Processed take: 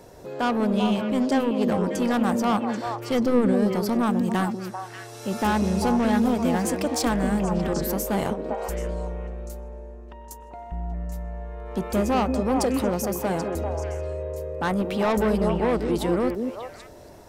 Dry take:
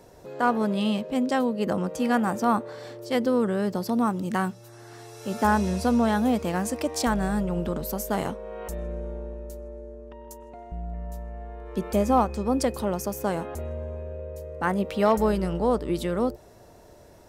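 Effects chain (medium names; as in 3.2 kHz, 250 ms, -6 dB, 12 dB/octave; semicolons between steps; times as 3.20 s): saturation -22.5 dBFS, distortion -10 dB; 2.86–3.53 s: bass shelf 150 Hz +9.5 dB; on a send: repeats whose band climbs or falls 196 ms, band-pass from 310 Hz, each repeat 1.4 oct, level -0.5 dB; 8.21–8.62 s: on the sum: transient shaper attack +6 dB, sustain -6 dB; trim +4 dB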